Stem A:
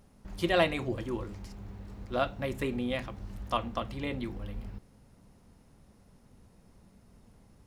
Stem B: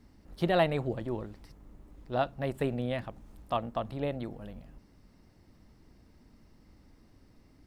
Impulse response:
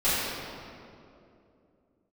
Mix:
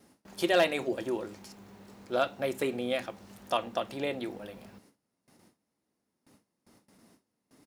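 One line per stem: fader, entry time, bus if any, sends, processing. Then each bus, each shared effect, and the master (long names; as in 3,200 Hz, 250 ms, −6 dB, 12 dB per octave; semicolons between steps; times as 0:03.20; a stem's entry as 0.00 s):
−0.5 dB, 0.00 s, no send, high-shelf EQ 4,000 Hz +7.5 dB; hard clipping −16 dBFS, distortion −21 dB
+1.0 dB, 2.2 ms, no send, downward compressor, threshold −32 dBFS, peak gain reduction 11.5 dB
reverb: not used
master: high-pass filter 220 Hz 12 dB per octave; noise gate with hold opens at −50 dBFS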